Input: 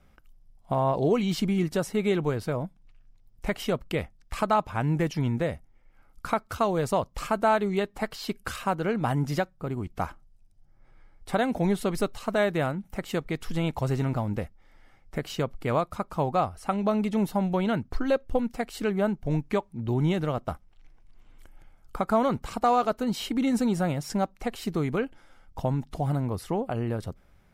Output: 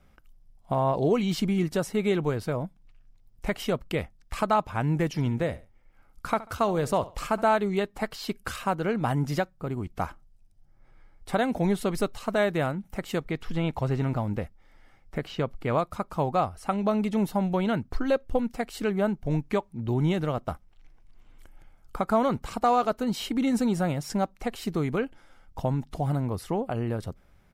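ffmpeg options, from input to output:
ffmpeg -i in.wav -filter_complex "[0:a]asplit=3[link_01][link_02][link_03];[link_01]afade=type=out:start_time=5.13:duration=0.02[link_04];[link_02]aecho=1:1:70|140:0.126|0.034,afade=type=in:start_time=5.13:duration=0.02,afade=type=out:start_time=7.41:duration=0.02[link_05];[link_03]afade=type=in:start_time=7.41:duration=0.02[link_06];[link_04][link_05][link_06]amix=inputs=3:normalize=0,asettb=1/sr,asplit=3[link_07][link_08][link_09];[link_07]atrim=end=13.204[link_10];[link_08]atrim=start=13.2:end=15.78,asetpts=PTS-STARTPTS,afade=type=in:duration=0.004:curve=qsin,afade=type=out:start_time=2.576:duration=0.004:curve=qsin,acrossover=split=4300[link_11][link_12];[link_12]acompressor=threshold=-59dB:ratio=4:attack=1:release=60[link_13];[link_11][link_13]amix=inputs=2:normalize=0[link_14];[link_09]atrim=start=15.776[link_15];[link_10][link_14]acrossfade=duration=0.004:curve1=hsin:curve2=qsin[link_16];[link_16][link_15]acrossfade=duration=0.004:curve1=qsin:curve2=hsin" out.wav

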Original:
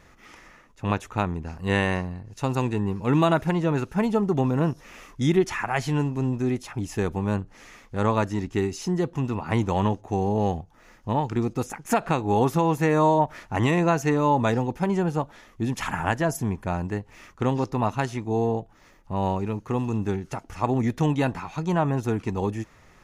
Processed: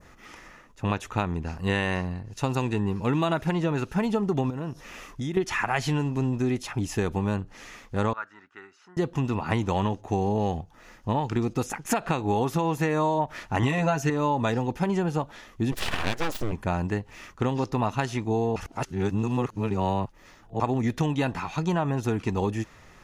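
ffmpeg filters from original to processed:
ffmpeg -i in.wav -filter_complex "[0:a]asettb=1/sr,asplit=3[link_01][link_02][link_03];[link_01]atrim=end=4.504[link_04];[link_02]atrim=start=4.5:end=5.37,asetpts=PTS-STARTPTS,afade=type=in:duration=0.004:curve=qsin,afade=type=out:start_time=0.866:duration=0.004:curve=qsin,acompressor=threshold=-31dB:ratio=4:attack=3.2:release=140:knee=1:detection=peak[link_05];[link_03]atrim=start=5.366[link_06];[link_04][link_05]acrossfade=duration=0.004:curve1=hsin:curve2=qsin[link_07];[link_07][link_06]acrossfade=duration=0.004:curve1=qsin:curve2=hsin,asettb=1/sr,asplit=3[link_08][link_09][link_10];[link_08]atrim=end=8.134[link_11];[link_09]atrim=start=8.13:end=8.97,asetpts=PTS-STARTPTS,afade=type=in:duration=0.004:curve=qsin,afade=type=out:start_time=0.836:duration=0.004:curve=qsin,bandpass=frequency=1400:width_type=q:width=6.4[link_12];[link_10]atrim=start=8.966[link_13];[link_11][link_12]acrossfade=duration=0.004:curve1=hsin:curve2=qsin[link_14];[link_14][link_13]acrossfade=duration=0.004:curve1=qsin:curve2=hsin,asettb=1/sr,asplit=3[link_15][link_16][link_17];[link_15]atrim=end=13.624[link_18];[link_16]atrim=start=13.62:end=14.1,asetpts=PTS-STARTPTS,afade=type=in:duration=0.004:curve=qsin,afade=type=out:start_time=0.476:duration=0.004:curve=qsin,aecho=1:1:7.3:0.99,atrim=end_sample=21168[link_19];[link_17]atrim=start=14.096[link_20];[link_18][link_19]acrossfade=duration=0.004:curve1=hsin:curve2=qsin[link_21];[link_21][link_20]acrossfade=duration=0.004:curve1=qsin:curve2=hsin,asplit=3[link_22][link_23][link_24];[link_22]afade=type=out:start_time=15.71:duration=0.02[link_25];[link_23]aeval=exprs='abs(val(0))':channel_layout=same,afade=type=in:start_time=15.71:duration=0.02,afade=type=out:start_time=16.51:duration=0.02[link_26];[link_24]afade=type=in:start_time=16.51:duration=0.02[link_27];[link_25][link_26][link_27]amix=inputs=3:normalize=0,asplit=3[link_28][link_29][link_30];[link_28]atrim=end=18.562[link_31];[link_29]atrim=start=18.558:end=20.602,asetpts=PTS-STARTPTS,areverse[link_32];[link_30]atrim=start=20.598[link_33];[link_31][link_32]acrossfade=duration=0.004:curve1=hsin:curve2=hsin[link_34];[link_34][link_33]acrossfade=duration=0.004:curve1=hsin:curve2=hsin,bandreject=frequency=2200:width=27,adynamicequalizer=threshold=0.00708:dfrequency=3300:dqfactor=0.73:tfrequency=3300:tqfactor=0.73:attack=5:release=100:ratio=0.375:range=2:mode=boostabove:tftype=bell,acompressor=threshold=-23dB:ratio=6,volume=2dB" out.wav

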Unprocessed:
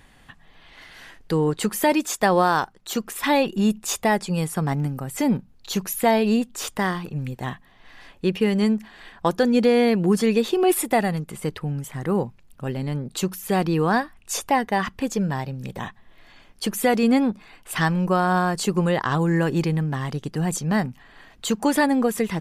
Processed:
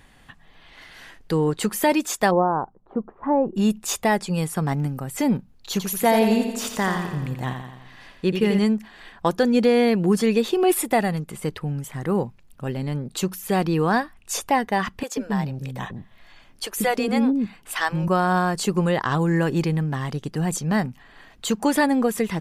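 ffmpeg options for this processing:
ffmpeg -i in.wav -filter_complex "[0:a]asplit=3[link_01][link_02][link_03];[link_01]afade=type=out:start_time=2.3:duration=0.02[link_04];[link_02]lowpass=frequency=1000:width=0.5412,lowpass=frequency=1000:width=1.3066,afade=type=in:start_time=2.3:duration=0.02,afade=type=out:start_time=3.55:duration=0.02[link_05];[link_03]afade=type=in:start_time=3.55:duration=0.02[link_06];[link_04][link_05][link_06]amix=inputs=3:normalize=0,asettb=1/sr,asplit=3[link_07][link_08][link_09];[link_07]atrim=end=5.714[link_10];[link_08]atrim=start=5.71:end=8.59,asetpts=PTS-STARTPTS,afade=type=in:duration=0.004:curve=qsin,afade=type=out:start_time=2.876:duration=0.004:curve=qsin,aecho=1:1:86|172|258|344|430|516|602:0.447|0.255|0.145|0.0827|0.0472|0.0269|0.0153,atrim=end_sample=127008[link_11];[link_09]atrim=start=8.586[link_12];[link_10][link_11]acrossfade=duration=0.004:curve1=hsin:curve2=qsin[link_13];[link_13][link_12]acrossfade=duration=0.004:curve1=qsin:curve2=hsin,asettb=1/sr,asplit=3[link_14][link_15][link_16];[link_14]atrim=end=15.034[link_17];[link_15]atrim=start=15.03:end=18.08,asetpts=PTS-STARTPTS,afade=type=in:duration=0.004:curve=qsin,afade=type=out:start_time=3.046:duration=0.004:curve=qsin,acrossover=split=410[link_18][link_19];[link_18]adelay=140[link_20];[link_20][link_19]amix=inputs=2:normalize=0,atrim=end_sample=134505[link_21];[link_16]atrim=start=18.076[link_22];[link_17][link_21]acrossfade=duration=0.004:curve1=hsin:curve2=qsin[link_23];[link_23][link_22]acrossfade=duration=0.004:curve1=qsin:curve2=hsin" out.wav

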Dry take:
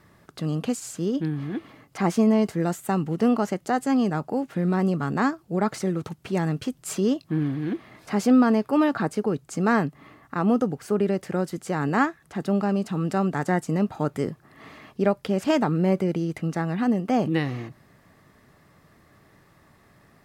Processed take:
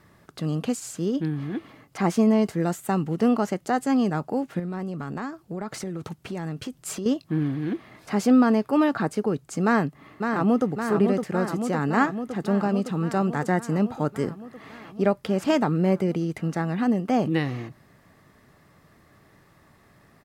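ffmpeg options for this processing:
ffmpeg -i in.wav -filter_complex "[0:a]asettb=1/sr,asplit=3[link_01][link_02][link_03];[link_01]atrim=end=4.594[link_04];[link_02]atrim=start=4.59:end=7.06,asetpts=PTS-STARTPTS,afade=type=in:duration=0.004:curve=qsin,afade=type=out:start_time=2.466:duration=0.004:curve=qsin,acompressor=threshold=-28dB:ratio=6:attack=3.2:release=140:knee=1:detection=peak[link_05];[link_03]atrim=start=7.056[link_06];[link_04][link_05]acrossfade=duration=0.004:curve1=hsin:curve2=qsin[link_07];[link_07][link_06]acrossfade=duration=0.004:curve1=qsin:curve2=hsin,asplit=2[link_08][link_09];[link_09]afade=type=in:start_time=9.64:duration=0.01,afade=type=out:start_time=10.67:duration=0.01,aecho=0:1:560|1120|1680|2240|2800|3360|3920|4480|5040|5600|6160|6720:0.530884|0.398163|0.298622|0.223967|0.167975|0.125981|0.094486|0.0708645|0.0531484|0.0398613|0.029896|0.022422[link_10];[link_08][link_10]amix=inputs=2:normalize=0" out.wav

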